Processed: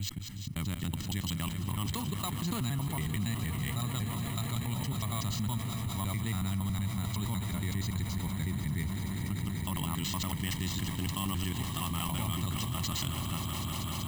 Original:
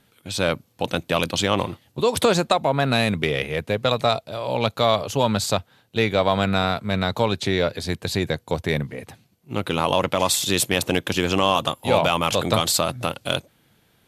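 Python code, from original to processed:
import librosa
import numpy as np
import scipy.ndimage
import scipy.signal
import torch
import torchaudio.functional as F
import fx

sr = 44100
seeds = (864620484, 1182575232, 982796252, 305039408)

y = fx.block_reorder(x, sr, ms=93.0, group=4)
y = fx.high_shelf(y, sr, hz=2300.0, db=-9.0)
y = fx.echo_swell(y, sr, ms=193, loudest=5, wet_db=-15)
y = np.repeat(y[::4], 4)[:len(y)]
y = fx.tone_stack(y, sr, knobs='6-0-2')
y = y + 0.75 * np.pad(y, (int(1.0 * sr / 1000.0), 0))[:len(y)]
y = y + 10.0 ** (-23.5 / 20.0) * np.pad(y, (int(337 * sr / 1000.0), 0))[:len(y)]
y = fx.env_flatten(y, sr, amount_pct=70)
y = y * librosa.db_to_amplitude(1.5)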